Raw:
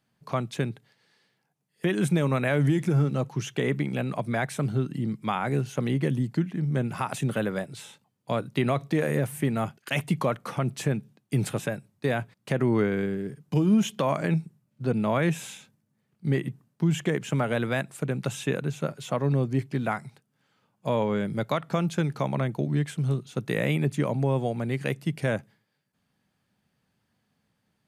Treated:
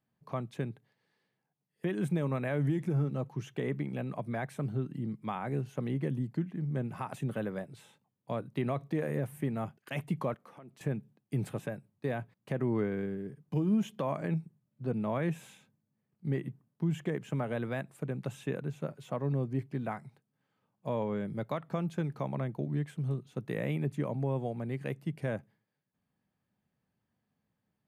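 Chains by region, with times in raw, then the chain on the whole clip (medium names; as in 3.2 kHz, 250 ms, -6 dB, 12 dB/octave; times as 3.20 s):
10.34–10.81 s: high-pass 230 Hz + compression 2.5:1, threshold -46 dBFS
whole clip: peaking EQ 6.1 kHz -9.5 dB 2.7 oct; band-stop 1.4 kHz, Q 18; trim -7 dB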